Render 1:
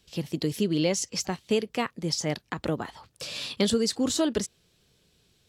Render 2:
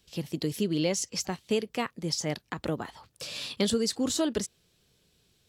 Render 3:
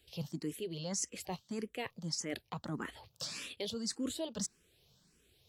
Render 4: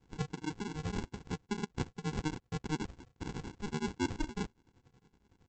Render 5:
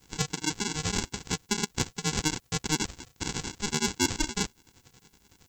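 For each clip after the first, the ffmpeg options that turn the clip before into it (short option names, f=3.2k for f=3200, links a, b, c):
-af "highshelf=f=11k:g=5,volume=-2.5dB"
-filter_complex "[0:a]areverse,acompressor=threshold=-34dB:ratio=6,areverse,asplit=2[a][b];[b]afreqshift=1.7[c];[a][c]amix=inputs=2:normalize=1,volume=1.5dB"
-af "aeval=exprs='val(0)*sin(2*PI*610*n/s)':c=same,aresample=16000,acrusher=samples=26:mix=1:aa=0.000001,aresample=44100,volume=5.5dB"
-af "crystalizer=i=8:c=0,asoftclip=type=tanh:threshold=-14.5dB,volume=4.5dB"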